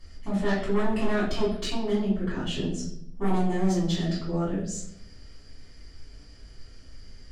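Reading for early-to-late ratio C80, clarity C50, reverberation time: 8.0 dB, 4.0 dB, 0.70 s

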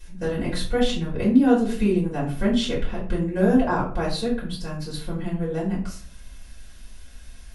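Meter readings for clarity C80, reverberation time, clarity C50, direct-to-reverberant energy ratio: 11.5 dB, 0.45 s, 7.0 dB, -7.5 dB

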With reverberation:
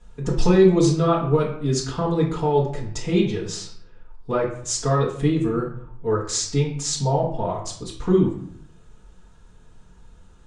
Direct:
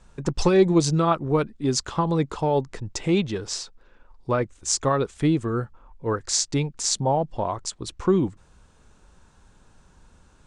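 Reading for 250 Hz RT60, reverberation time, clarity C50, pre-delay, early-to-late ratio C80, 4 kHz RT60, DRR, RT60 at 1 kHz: 0.80 s, 0.60 s, 6.0 dB, 4 ms, 10.0 dB, 0.45 s, -6.0 dB, 0.60 s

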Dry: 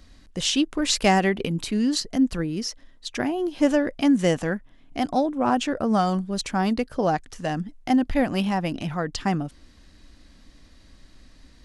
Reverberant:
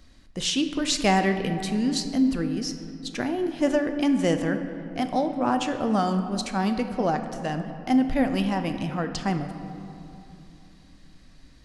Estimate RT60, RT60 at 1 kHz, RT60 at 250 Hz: 2.9 s, 2.8 s, 3.6 s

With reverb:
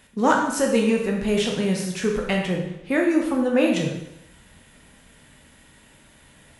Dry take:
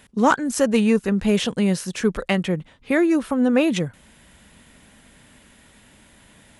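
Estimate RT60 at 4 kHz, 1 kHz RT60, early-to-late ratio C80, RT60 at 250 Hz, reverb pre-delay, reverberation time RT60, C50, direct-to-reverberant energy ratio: 0.80 s, 0.80 s, 7.0 dB, 0.80 s, 7 ms, 0.80 s, 4.0 dB, 0.0 dB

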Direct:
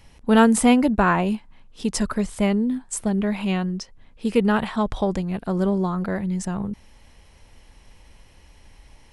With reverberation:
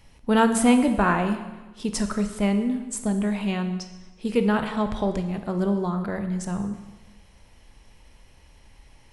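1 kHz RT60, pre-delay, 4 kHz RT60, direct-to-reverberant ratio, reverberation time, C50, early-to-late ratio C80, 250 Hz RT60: 1.2 s, 8 ms, 1.1 s, 7.0 dB, 1.2 s, 9.0 dB, 11.0 dB, 1.2 s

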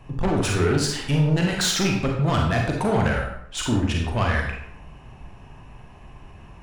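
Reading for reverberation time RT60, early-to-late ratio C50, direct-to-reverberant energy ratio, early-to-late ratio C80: 0.70 s, 2.5 dB, -0.5 dB, 6.5 dB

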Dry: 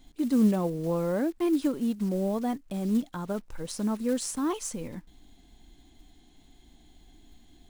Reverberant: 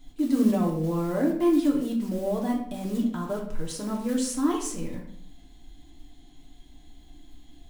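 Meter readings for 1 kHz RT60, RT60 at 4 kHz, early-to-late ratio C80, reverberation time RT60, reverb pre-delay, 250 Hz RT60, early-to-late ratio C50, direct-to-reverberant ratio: 0.55 s, 0.50 s, 9.5 dB, 0.60 s, 3 ms, 0.75 s, 6.0 dB, -1.0 dB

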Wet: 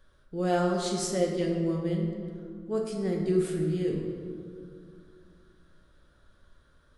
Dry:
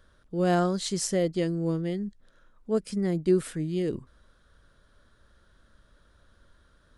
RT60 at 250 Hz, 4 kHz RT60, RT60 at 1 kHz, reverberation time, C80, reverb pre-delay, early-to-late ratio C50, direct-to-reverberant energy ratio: 3.1 s, 1.2 s, 2.1 s, 2.3 s, 4.5 dB, 5 ms, 3.0 dB, -1.5 dB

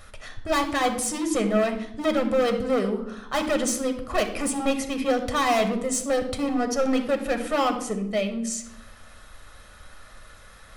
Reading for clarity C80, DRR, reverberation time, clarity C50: 12.5 dB, 5.5 dB, 0.80 s, 9.5 dB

